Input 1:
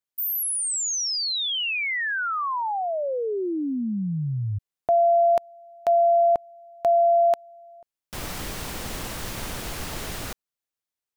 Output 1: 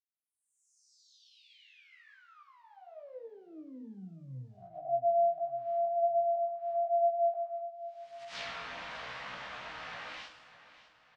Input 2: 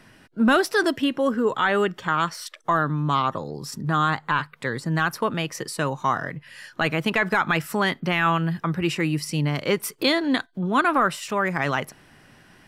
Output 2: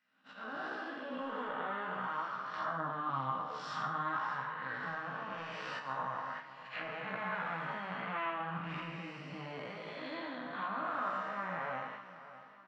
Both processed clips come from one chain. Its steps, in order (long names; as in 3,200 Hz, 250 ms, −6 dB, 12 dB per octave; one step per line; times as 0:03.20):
spectrum smeared in time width 409 ms
noise gate −35 dBFS, range −18 dB
low-pass that shuts in the quiet parts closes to 2,800 Hz, open at −20 dBFS
meter weighting curve ITU-R 468
treble cut that deepens with the level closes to 950 Hz, closed at −28 dBFS
parametric band 370 Hz −13 dB 0.43 octaves
automatic gain control gain up to 7 dB
volume swells 118 ms
tuned comb filter 63 Hz, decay 0.63 s, harmonics all, mix 70%
multi-voice chorus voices 2, 0.91 Hz, delay 17 ms, depth 2.2 ms
on a send: repeating echo 601 ms, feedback 45%, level −15 dB
on the sum: rectangular room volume 150 cubic metres, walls furnished, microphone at 0.54 metres